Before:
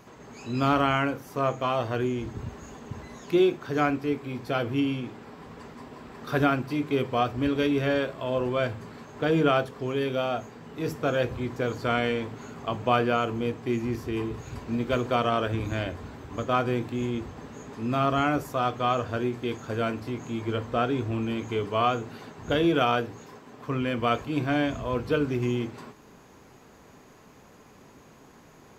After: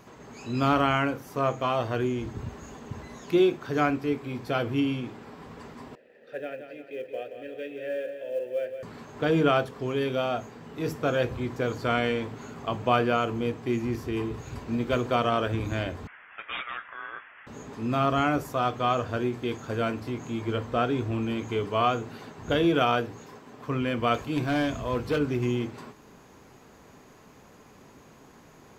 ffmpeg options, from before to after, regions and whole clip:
ffmpeg -i in.wav -filter_complex "[0:a]asettb=1/sr,asplit=3[link_01][link_02][link_03];[link_01]atrim=end=5.954[link_04];[link_02]atrim=start=5.95:end=8.83,asetpts=PTS-STARTPTS,afade=type=in:duration=0.004:curve=qsin,afade=type=out:start_time=2.876:duration=0.004:curve=qsin,asplit=3[link_05][link_06][link_07];[link_05]bandpass=frequency=530:width_type=q:width=8,volume=0dB[link_08];[link_06]bandpass=frequency=1840:width_type=q:width=8,volume=-6dB[link_09];[link_07]bandpass=frequency=2480:width_type=q:width=8,volume=-9dB[link_10];[link_08][link_09][link_10]amix=inputs=3:normalize=0,acrusher=bits=9:mode=log:mix=0:aa=0.000001,aecho=1:1:175|350|525|700|875:0.376|0.177|0.083|0.039|0.0183,atrim=end_sample=127008[link_11];[link_03]atrim=start=8.826[link_12];[link_04][link_11]acrossfade=duration=0.004:curve1=hsin:curve2=qsin[link_13];[link_13][link_12]acrossfade=duration=0.004:curve1=qsin:curve2=hsin,asettb=1/sr,asplit=3[link_14][link_15][link_16];[link_14]atrim=end=16.074[link_17];[link_15]atrim=start=16.07:end=17.47,asetpts=PTS-STARTPTS,afade=type=in:duration=0.004:curve=qsin,afade=type=out:start_time=1.396:duration=0.004:curve=qsin,highpass=frequency=2100:width_type=q:width=3.3,aeval=exprs='(mod(15*val(0)+1,2)-1)/15':channel_layout=same,lowpass=frequency=3100:width_type=q:width=0.5098,lowpass=frequency=3100:width_type=q:width=0.6013,lowpass=frequency=3100:width_type=q:width=0.9,lowpass=frequency=3100:width_type=q:width=2.563,afreqshift=-3700[link_18];[link_16]atrim=start=17.466[link_19];[link_17][link_18]acrossfade=duration=0.004:curve1=hsin:curve2=qsin[link_20];[link_20][link_19]acrossfade=duration=0.004:curve1=qsin:curve2=hsin,asettb=1/sr,asplit=3[link_21][link_22][link_23];[link_21]atrim=end=24.144[link_24];[link_22]atrim=start=24.14:end=25.19,asetpts=PTS-STARTPTS,afade=type=in:duration=0.004:curve=qsin,afade=type=out:start_time=1.046:duration=0.004:curve=qsin,highshelf=frequency=3900:gain=4,volume=20.5dB,asoftclip=hard,volume=-20.5dB[link_25];[link_23]atrim=start=25.186[link_26];[link_24][link_25]acrossfade=duration=0.004:curve1=hsin:curve2=qsin[link_27];[link_27][link_26]acrossfade=duration=0.004:curve1=qsin:curve2=hsin" out.wav

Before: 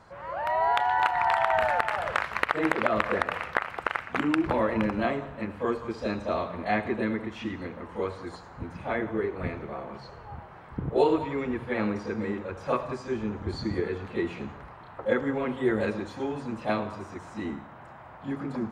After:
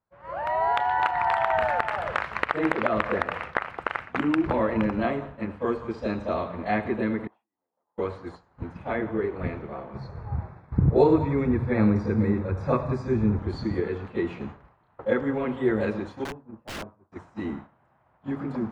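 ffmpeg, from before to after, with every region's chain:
ffmpeg -i in.wav -filter_complex "[0:a]asettb=1/sr,asplit=3[link_01][link_02][link_03];[link_01]atrim=end=7.274[link_04];[link_02]atrim=start=7.27:end=7.98,asetpts=PTS-STARTPTS,afade=type=in:duration=0.004:curve=qsin,afade=type=out:start_time=0.706:duration=0.004:curve=qsin,acompressor=threshold=-37dB:ratio=10:attack=3.2:release=140:knee=1:detection=peak,bandpass=frequency=790:width_type=q:width=3.2[link_05];[link_03]atrim=start=7.976[link_06];[link_04][link_05]acrossfade=duration=0.004:curve1=hsin:curve2=qsin[link_07];[link_07][link_06]acrossfade=duration=0.004:curve1=qsin:curve2=hsin,asettb=1/sr,asplit=3[link_08][link_09][link_10];[link_08]atrim=end=9.944[link_11];[link_09]atrim=start=9.94:end=13.39,asetpts=PTS-STARTPTS,afade=type=in:duration=0.004:curve=qsin,afade=type=out:start_time=3.446:duration=0.004:curve=qsin,asuperstop=centerf=3000:order=4:qfactor=3.7,equalizer=frequency=93:width=0.54:gain=12.5[link_12];[link_10]atrim=start=13.386[link_13];[link_11][link_12]acrossfade=duration=0.004:curve1=hsin:curve2=qsin[link_14];[link_14][link_13]acrossfade=duration=0.004:curve1=qsin:curve2=hsin,asettb=1/sr,asplit=3[link_15][link_16][link_17];[link_15]atrim=end=16.244[link_18];[link_16]atrim=start=16.24:end=17.12,asetpts=PTS-STARTPTS,afade=type=in:duration=0.004:curve=qsin,afade=type=out:start_time=0.876:duration=0.004:curve=qsin,agate=range=-8dB:threshold=-31dB:ratio=16:release=100:detection=peak,lowpass=1200,aeval=exprs='(mod(28.2*val(0)+1,2)-1)/28.2':channel_layout=same[link_19];[link_17]atrim=start=17.116[link_20];[link_18][link_19]acrossfade=duration=0.004:curve1=hsin:curve2=qsin[link_21];[link_21][link_20]acrossfade=duration=0.004:curve1=qsin:curve2=hsin,lowshelf=frequency=460:gain=3,agate=range=-33dB:threshold=-33dB:ratio=3:detection=peak,highshelf=frequency=6500:gain=-11.5" out.wav

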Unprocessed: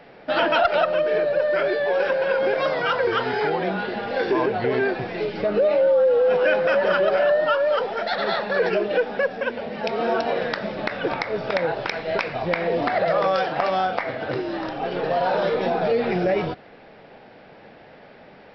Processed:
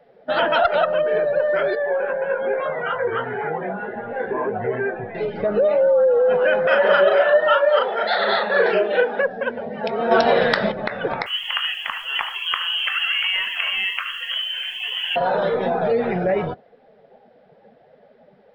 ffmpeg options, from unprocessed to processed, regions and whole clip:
ffmpeg -i in.wav -filter_complex "[0:a]asettb=1/sr,asplit=3[link_01][link_02][link_03];[link_01]atrim=end=1.754[link_04];[link_02]atrim=start=1.75:end=5.15,asetpts=PTS-STARTPTS,afade=type=in:duration=0.004:curve=qsin,afade=type=out:start_time=3.396:duration=0.004:curve=qsin,lowpass=frequency=2900:width=0.5412,lowpass=frequency=2900:width=1.3066,flanger=delay=17:depth=2.5:speed=1.3[link_05];[link_03]atrim=start=5.146[link_06];[link_04][link_05]acrossfade=duration=0.004:curve1=hsin:curve2=qsin[link_07];[link_07][link_06]acrossfade=duration=0.004:curve1=qsin:curve2=hsin,asettb=1/sr,asplit=3[link_08][link_09][link_10];[link_08]atrim=end=6.674[link_11];[link_09]atrim=start=6.67:end=9.22,asetpts=PTS-STARTPTS,afade=type=in:duration=0.004:curve=qsin,afade=type=out:start_time=2.546:duration=0.004:curve=qsin,highpass=250,lowpass=3500,aemphasis=mode=production:type=75kf,asplit=2[link_12][link_13];[link_13]adelay=37,volume=-2dB[link_14];[link_12][link_14]amix=inputs=2:normalize=0,atrim=end_sample=112455[link_15];[link_10]atrim=start=9.216[link_16];[link_11][link_15]acrossfade=duration=0.004:curve1=hsin:curve2=qsin[link_17];[link_17][link_16]acrossfade=duration=0.004:curve1=qsin:curve2=hsin,asettb=1/sr,asplit=3[link_18][link_19][link_20];[link_18]atrim=end=10.114[link_21];[link_19]atrim=start=10.11:end=10.72,asetpts=PTS-STARTPTS,afade=type=in:duration=0.004:curve=qsin,afade=type=out:start_time=0.606:duration=0.004:curve=qsin,highshelf=frequency=2700:gain=5,acontrast=54[link_22];[link_20]atrim=start=10.716[link_23];[link_21][link_22]acrossfade=duration=0.004:curve1=hsin:curve2=qsin[link_24];[link_24][link_23]acrossfade=duration=0.004:curve1=qsin:curve2=hsin,asettb=1/sr,asplit=3[link_25][link_26][link_27];[link_25]atrim=end=11.264[link_28];[link_26]atrim=start=11.26:end=15.16,asetpts=PTS-STARTPTS,afade=type=in:duration=0.004:curve=qsin,afade=type=out:start_time=3.896:duration=0.004:curve=qsin,lowpass=frequency=2900:width_type=q:width=0.5098,lowpass=frequency=2900:width_type=q:width=0.6013,lowpass=frequency=2900:width_type=q:width=0.9,lowpass=frequency=2900:width_type=q:width=2.563,afreqshift=-3400,acrusher=bits=7:dc=4:mix=0:aa=0.000001,aecho=1:1:75:0.282,atrim=end_sample=171990[link_29];[link_27]atrim=start=15.156[link_30];[link_28][link_29]acrossfade=duration=0.004:curve1=hsin:curve2=qsin[link_31];[link_31][link_30]acrossfade=duration=0.004:curve1=qsin:curve2=hsin,afftdn=noise_reduction=15:noise_floor=-37,superequalizer=6b=0.501:12b=0.631:14b=0.708,volume=1.5dB" out.wav

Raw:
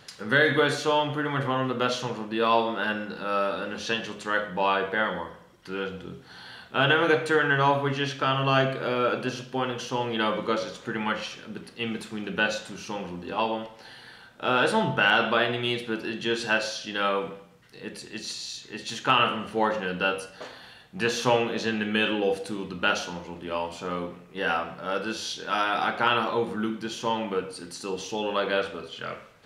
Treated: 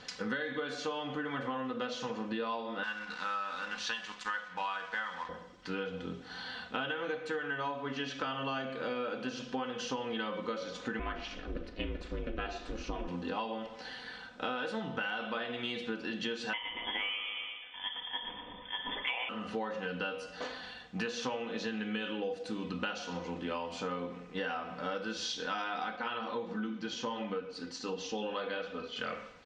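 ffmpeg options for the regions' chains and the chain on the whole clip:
ffmpeg -i in.wav -filter_complex "[0:a]asettb=1/sr,asplit=3[link_01][link_02][link_03];[link_01]atrim=end=2.834[link_04];[link_02]atrim=start=2.83:end=5.29,asetpts=PTS-STARTPTS,afade=type=in:duration=0.004:curve=qsin,afade=type=out:start_time=2.456:duration=0.004:curve=qsin,aeval=exprs='sgn(val(0))*max(abs(val(0))-0.00631,0)':channel_layout=same,lowshelf=frequency=690:width_type=q:width=1.5:gain=-11[link_05];[link_03]atrim=start=5.286[link_06];[link_04][link_05]acrossfade=duration=0.004:curve1=hsin:curve2=qsin[link_07];[link_07][link_06]acrossfade=duration=0.004:curve1=qsin:curve2=hsin,asettb=1/sr,asplit=3[link_08][link_09][link_10];[link_08]atrim=end=10.994[link_11];[link_09]atrim=start=10.99:end=13.08,asetpts=PTS-STARTPTS,afade=type=in:duration=0.004:curve=qsin,afade=type=out:start_time=2.086:duration=0.004:curve=qsin,aemphasis=mode=reproduction:type=bsi,aeval=exprs='val(0)*sin(2*PI*160*n/s)':channel_layout=same[link_12];[link_10]atrim=start=13.076[link_13];[link_11][link_12]acrossfade=duration=0.004:curve1=hsin:curve2=qsin[link_14];[link_14][link_13]acrossfade=duration=0.004:curve1=qsin:curve2=hsin,asettb=1/sr,asplit=3[link_15][link_16][link_17];[link_15]atrim=end=16.534[link_18];[link_16]atrim=start=16.53:end=19.29,asetpts=PTS-STARTPTS,afade=type=in:duration=0.004:curve=qsin,afade=type=out:start_time=2.756:duration=0.004:curve=qsin,aecho=1:1:117|234|351|468|585|702:0.355|0.177|0.0887|0.0444|0.0222|0.0111,atrim=end_sample=121716,lowpass=frequency=3100:width_type=q:width=0.5098,lowpass=frequency=3100:width_type=q:width=0.6013,lowpass=frequency=3100:width_type=q:width=0.9,lowpass=frequency=3100:width_type=q:width=2.563,afreqshift=-3600[link_19];[link_17]atrim=start=19.286[link_20];[link_18][link_19]acrossfade=duration=0.004:curve1=hsin:curve2=qsin[link_21];[link_21][link_20]acrossfade=duration=0.004:curve1=qsin:curve2=hsin,asettb=1/sr,asplit=3[link_22][link_23][link_24];[link_22]atrim=end=25.964[link_25];[link_23]atrim=start=25.96:end=28.96,asetpts=PTS-STARTPTS,afade=type=in:duration=0.004:curve=qsin,afade=type=out:start_time=2.996:duration=0.004:curve=qsin,lowpass=frequency=7000:width=0.5412,lowpass=frequency=7000:width=1.3066,flanger=delay=3.8:depth=4.6:regen=-52:speed=1.4:shape=sinusoidal[link_26];[link_24]atrim=start=28.956[link_27];[link_25][link_26]acrossfade=duration=0.004:curve1=hsin:curve2=qsin[link_28];[link_28][link_27]acrossfade=duration=0.004:curve1=qsin:curve2=hsin,lowpass=frequency=6900:width=0.5412,lowpass=frequency=6900:width=1.3066,aecho=1:1:4:0.58,acompressor=threshold=-33dB:ratio=12" out.wav

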